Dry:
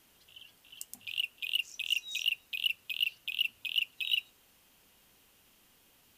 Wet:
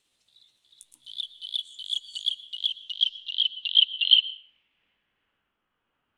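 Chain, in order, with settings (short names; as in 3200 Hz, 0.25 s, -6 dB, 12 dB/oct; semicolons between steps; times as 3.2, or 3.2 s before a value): gliding pitch shift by +4.5 st ending unshifted; bell 3000 Hz +10 dB 0.71 oct; in parallel at -11 dB: backlash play -28 dBFS; on the sum: low-pass sweep 9000 Hz -> 1400 Hz, 2.27–5.56; on a send at -12 dB: reverb RT60 0.60 s, pre-delay 0.106 s; on the sum: upward expander 1.5:1, over -27 dBFS; gain -2.5 dB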